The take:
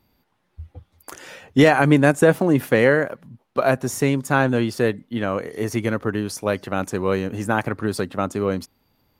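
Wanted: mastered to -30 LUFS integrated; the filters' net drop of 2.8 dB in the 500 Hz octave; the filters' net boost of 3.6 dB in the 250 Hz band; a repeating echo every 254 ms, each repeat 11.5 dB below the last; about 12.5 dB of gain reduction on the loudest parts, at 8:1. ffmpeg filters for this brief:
-af "equalizer=f=250:t=o:g=6,equalizer=f=500:t=o:g=-5,acompressor=threshold=0.1:ratio=8,aecho=1:1:254|508|762:0.266|0.0718|0.0194,volume=0.668"

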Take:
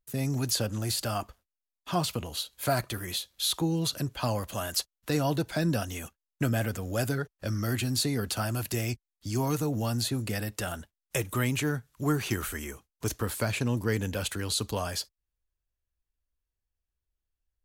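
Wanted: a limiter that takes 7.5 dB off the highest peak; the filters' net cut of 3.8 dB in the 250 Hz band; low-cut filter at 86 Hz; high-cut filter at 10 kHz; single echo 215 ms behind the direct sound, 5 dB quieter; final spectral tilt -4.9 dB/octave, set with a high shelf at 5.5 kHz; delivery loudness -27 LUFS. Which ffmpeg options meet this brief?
-af "highpass=86,lowpass=10000,equalizer=f=250:t=o:g=-5,highshelf=f=5500:g=-8.5,alimiter=limit=0.0631:level=0:latency=1,aecho=1:1:215:0.562,volume=2.24"

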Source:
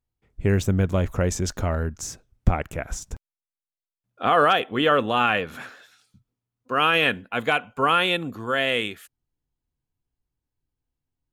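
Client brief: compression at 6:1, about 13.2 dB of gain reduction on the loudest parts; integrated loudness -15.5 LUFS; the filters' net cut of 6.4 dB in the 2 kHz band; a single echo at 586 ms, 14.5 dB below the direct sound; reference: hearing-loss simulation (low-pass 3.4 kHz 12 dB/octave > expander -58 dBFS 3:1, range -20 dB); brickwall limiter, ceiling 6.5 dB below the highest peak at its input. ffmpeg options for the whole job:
-af "equalizer=f=2000:t=o:g=-8.5,acompressor=threshold=0.0501:ratio=6,alimiter=limit=0.0841:level=0:latency=1,lowpass=3400,aecho=1:1:586:0.188,agate=range=0.1:threshold=0.00126:ratio=3,volume=8.41"

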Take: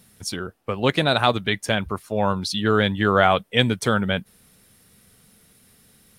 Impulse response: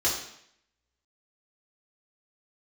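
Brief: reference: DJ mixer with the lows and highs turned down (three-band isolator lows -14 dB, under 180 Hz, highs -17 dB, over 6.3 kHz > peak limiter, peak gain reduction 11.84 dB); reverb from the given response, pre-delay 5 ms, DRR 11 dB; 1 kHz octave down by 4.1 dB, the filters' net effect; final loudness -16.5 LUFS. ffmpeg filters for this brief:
-filter_complex "[0:a]equalizer=f=1000:t=o:g=-6,asplit=2[s0][s1];[1:a]atrim=start_sample=2205,adelay=5[s2];[s1][s2]afir=irnorm=-1:irlink=0,volume=0.0794[s3];[s0][s3]amix=inputs=2:normalize=0,acrossover=split=180 6300:gain=0.2 1 0.141[s4][s5][s6];[s4][s5][s6]amix=inputs=3:normalize=0,volume=3.98,alimiter=limit=0.631:level=0:latency=1"

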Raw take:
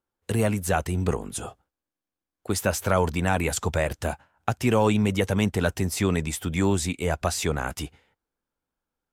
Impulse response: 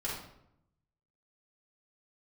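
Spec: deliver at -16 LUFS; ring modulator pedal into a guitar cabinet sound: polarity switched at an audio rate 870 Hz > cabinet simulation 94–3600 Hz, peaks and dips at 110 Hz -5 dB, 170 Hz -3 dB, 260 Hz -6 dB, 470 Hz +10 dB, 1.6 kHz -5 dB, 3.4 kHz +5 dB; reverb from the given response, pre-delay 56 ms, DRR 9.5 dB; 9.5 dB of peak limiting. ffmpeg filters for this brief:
-filter_complex "[0:a]alimiter=limit=0.133:level=0:latency=1,asplit=2[s0][s1];[1:a]atrim=start_sample=2205,adelay=56[s2];[s1][s2]afir=irnorm=-1:irlink=0,volume=0.211[s3];[s0][s3]amix=inputs=2:normalize=0,aeval=exprs='val(0)*sgn(sin(2*PI*870*n/s))':c=same,highpass=94,equalizer=f=110:t=q:w=4:g=-5,equalizer=f=170:t=q:w=4:g=-3,equalizer=f=260:t=q:w=4:g=-6,equalizer=f=470:t=q:w=4:g=10,equalizer=f=1600:t=q:w=4:g=-5,equalizer=f=3400:t=q:w=4:g=5,lowpass=f=3600:w=0.5412,lowpass=f=3600:w=1.3066,volume=3.76"

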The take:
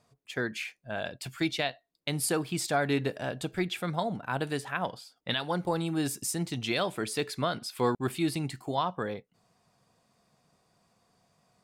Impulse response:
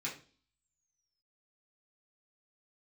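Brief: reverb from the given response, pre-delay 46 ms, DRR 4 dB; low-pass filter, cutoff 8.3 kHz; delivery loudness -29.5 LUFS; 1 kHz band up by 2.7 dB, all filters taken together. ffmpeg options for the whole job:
-filter_complex "[0:a]lowpass=8300,equalizer=f=1000:t=o:g=3.5,asplit=2[s0][s1];[1:a]atrim=start_sample=2205,adelay=46[s2];[s1][s2]afir=irnorm=-1:irlink=0,volume=0.501[s3];[s0][s3]amix=inputs=2:normalize=0,volume=1.06"

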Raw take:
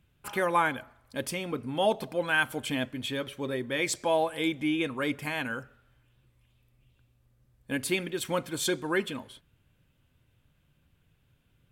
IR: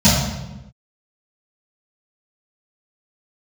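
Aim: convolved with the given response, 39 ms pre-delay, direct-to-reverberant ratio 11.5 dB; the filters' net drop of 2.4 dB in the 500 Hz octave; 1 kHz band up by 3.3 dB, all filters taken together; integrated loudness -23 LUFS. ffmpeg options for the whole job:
-filter_complex "[0:a]equalizer=f=500:t=o:g=-5,equalizer=f=1000:t=o:g=5.5,asplit=2[s0][s1];[1:a]atrim=start_sample=2205,adelay=39[s2];[s1][s2]afir=irnorm=-1:irlink=0,volume=0.0178[s3];[s0][s3]amix=inputs=2:normalize=0,volume=2"

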